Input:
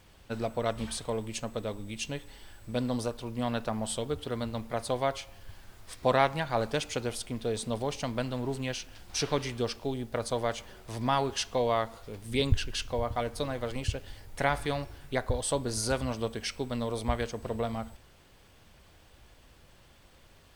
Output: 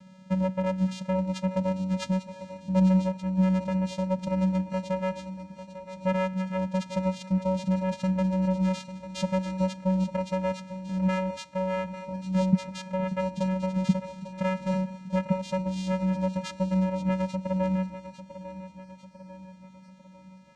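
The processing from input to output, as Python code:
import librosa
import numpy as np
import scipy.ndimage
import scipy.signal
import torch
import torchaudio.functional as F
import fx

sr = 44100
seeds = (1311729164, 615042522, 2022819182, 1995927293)

y = fx.rider(x, sr, range_db=5, speed_s=0.5)
y = fx.vocoder(y, sr, bands=4, carrier='square', carrier_hz=187.0)
y = fx.echo_feedback(y, sr, ms=847, feedback_pct=50, wet_db=-12.5)
y = F.gain(torch.from_numpy(y), 6.0).numpy()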